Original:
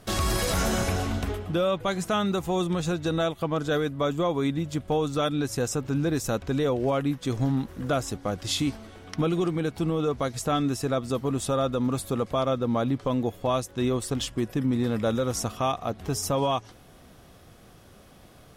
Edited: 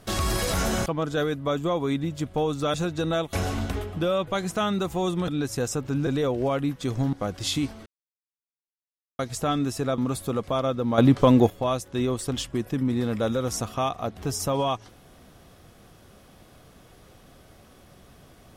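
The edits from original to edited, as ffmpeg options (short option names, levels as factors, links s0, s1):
-filter_complex "[0:a]asplit=12[s0][s1][s2][s3][s4][s5][s6][s7][s8][s9][s10][s11];[s0]atrim=end=0.862[s12];[s1]atrim=start=3.398:end=5.282[s13];[s2]atrim=start=2.808:end=3.402[s14];[s3]atrim=start=0.858:end=2.812[s15];[s4]atrim=start=5.278:end=6.072[s16];[s5]atrim=start=6.488:end=7.552[s17];[s6]atrim=start=8.168:end=8.9,asetpts=PTS-STARTPTS,afade=t=out:st=0.728:d=0.004:c=hsin[s18];[s7]atrim=start=8.9:end=10.23,asetpts=PTS-STARTPTS,volume=0[s19];[s8]atrim=start=10.23:end=11.022,asetpts=PTS-STARTPTS,afade=t=in:d=0.004:c=hsin[s20];[s9]atrim=start=11.808:end=12.812[s21];[s10]atrim=start=12.808:end=13.332,asetpts=PTS-STARTPTS,volume=2.99[s22];[s11]atrim=start=13.328[s23];[s12][s13]acrossfade=d=0.004:c1=hsin:c2=hsin[s24];[s24][s14]acrossfade=d=0.004:c1=hsin:c2=hsin[s25];[s25][s15]acrossfade=d=0.004:c1=hsin:c2=hsin[s26];[s26][s16]acrossfade=d=0.004:c1=hsin:c2=hsin[s27];[s27][s17]acrossfade=d=0.004:c1=hsin:c2=hsin[s28];[s18][s19][s20]concat=n=3:v=0:a=1[s29];[s28][s29]acrossfade=d=0.004:c1=hsin:c2=hsin[s30];[s30][s21]acrossfade=d=0.004:c1=hsin:c2=hsin[s31];[s31][s22]acrossfade=d=0.004:c1=hsin:c2=hsin[s32];[s32][s23]acrossfade=d=0.004:c1=hsin:c2=hsin"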